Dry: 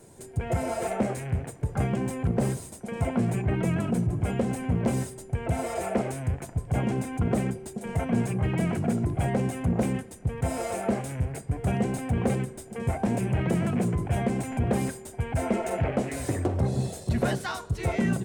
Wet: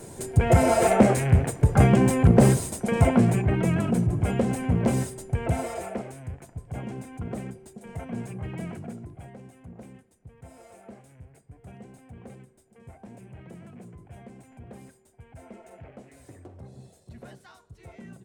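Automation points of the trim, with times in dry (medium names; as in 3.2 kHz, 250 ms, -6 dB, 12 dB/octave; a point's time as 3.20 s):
2.94 s +9.5 dB
3.52 s +2.5 dB
5.48 s +2.5 dB
6.07 s -8.5 dB
8.68 s -8.5 dB
9.36 s -19.5 dB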